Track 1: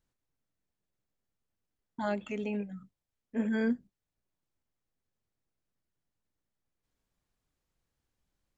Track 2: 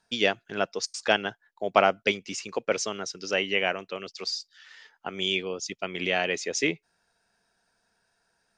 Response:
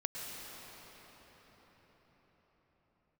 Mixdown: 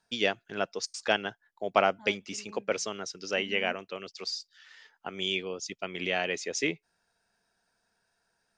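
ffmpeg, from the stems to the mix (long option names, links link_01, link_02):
-filter_complex "[0:a]volume=-16.5dB[link_01];[1:a]volume=-3.5dB[link_02];[link_01][link_02]amix=inputs=2:normalize=0"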